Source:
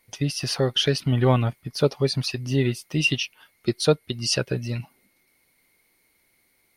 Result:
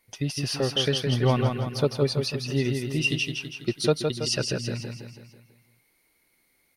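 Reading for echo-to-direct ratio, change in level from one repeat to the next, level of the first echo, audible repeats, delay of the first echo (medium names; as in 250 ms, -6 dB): -3.5 dB, -6.0 dB, -5.0 dB, 6, 164 ms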